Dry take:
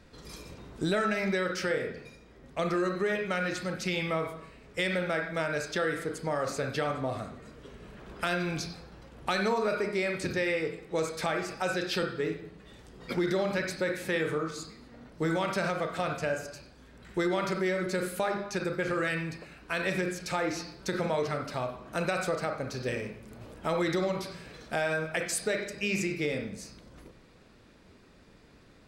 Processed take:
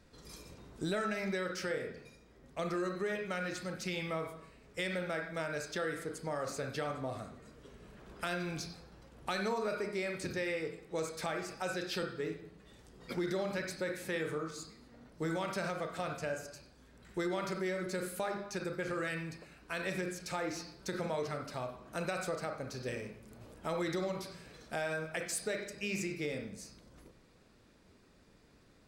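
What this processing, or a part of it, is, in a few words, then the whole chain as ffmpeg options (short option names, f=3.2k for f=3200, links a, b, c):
exciter from parts: -filter_complex "[0:a]asplit=2[a][b];[b]highpass=4.2k,asoftclip=type=tanh:threshold=-38dB,volume=-4dB[c];[a][c]amix=inputs=2:normalize=0,volume=-6.5dB"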